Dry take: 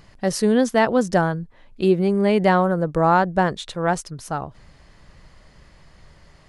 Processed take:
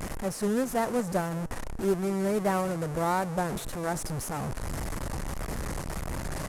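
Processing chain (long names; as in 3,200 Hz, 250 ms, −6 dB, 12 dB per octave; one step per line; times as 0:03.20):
linear delta modulator 64 kbit/s, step −18 dBFS
parametric band 3,500 Hz −13.5 dB 1.7 octaves
reversed playback
upward compression, threshold −21 dBFS
reversed playback
harmonic generator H 6 −22 dB, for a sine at −5.5 dBFS
pitch vibrato 1.7 Hz 63 cents
on a send: echo with shifted repeats 205 ms, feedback 47%, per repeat −43 Hz, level −23 dB
on the sum: level −9 dB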